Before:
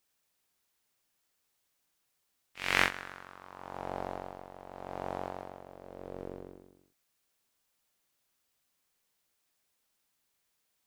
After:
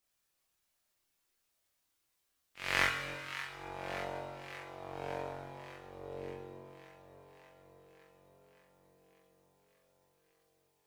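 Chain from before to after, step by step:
delay that swaps between a low-pass and a high-pass 289 ms, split 870 Hz, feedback 82%, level −10 dB
four-comb reverb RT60 1.6 s, combs from 28 ms, DRR 6 dB
multi-voice chorus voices 6, 0.2 Hz, delay 29 ms, depth 1.8 ms

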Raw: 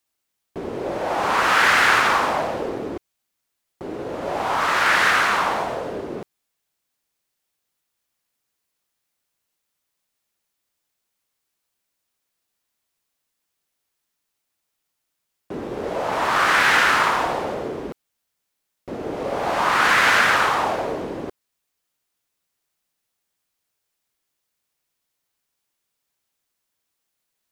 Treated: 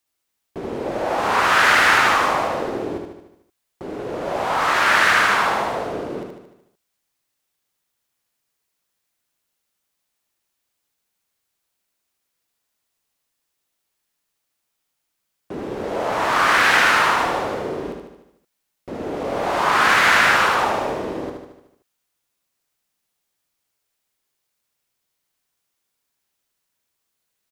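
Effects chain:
repeating echo 75 ms, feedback 56%, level −5 dB

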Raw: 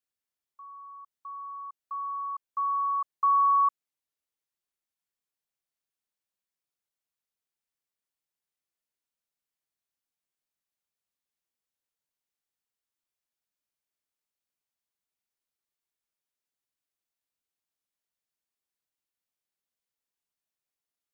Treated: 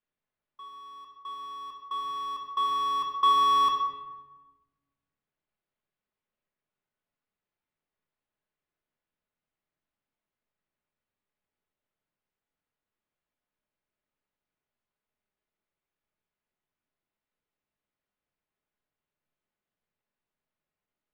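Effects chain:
each half-wave held at its own peak
high-frequency loss of the air 380 metres
rectangular room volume 700 cubic metres, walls mixed, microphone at 1.4 metres
level +2.5 dB

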